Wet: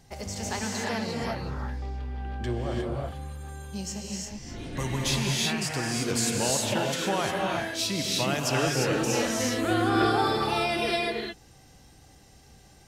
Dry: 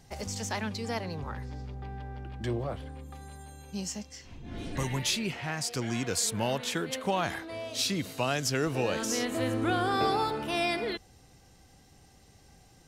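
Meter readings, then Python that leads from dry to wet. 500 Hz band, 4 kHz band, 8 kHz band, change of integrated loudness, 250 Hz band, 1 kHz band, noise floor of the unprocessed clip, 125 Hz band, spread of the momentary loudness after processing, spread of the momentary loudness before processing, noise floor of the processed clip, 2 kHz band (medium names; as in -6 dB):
+3.5 dB, +4.5 dB, +4.0 dB, +3.5 dB, +4.0 dB, +3.5 dB, -58 dBFS, +4.0 dB, 11 LU, 13 LU, -54 dBFS, +4.5 dB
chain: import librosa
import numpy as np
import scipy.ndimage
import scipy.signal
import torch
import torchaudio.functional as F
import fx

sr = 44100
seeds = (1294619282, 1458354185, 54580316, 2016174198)

y = fx.rev_gated(x, sr, seeds[0], gate_ms=380, shape='rising', drr_db=-2.0)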